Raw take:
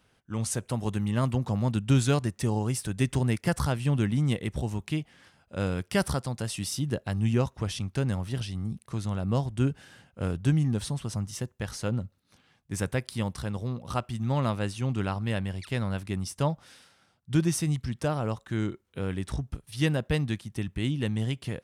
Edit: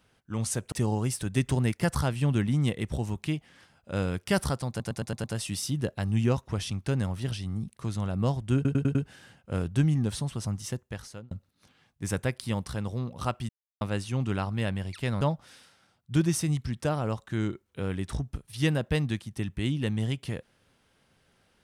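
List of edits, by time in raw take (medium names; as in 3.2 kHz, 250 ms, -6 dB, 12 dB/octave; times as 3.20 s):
0.72–2.36 s: delete
6.33 s: stutter 0.11 s, 6 plays
9.64 s: stutter 0.10 s, 5 plays
11.43–12.00 s: fade out
14.18–14.50 s: mute
15.90–16.40 s: delete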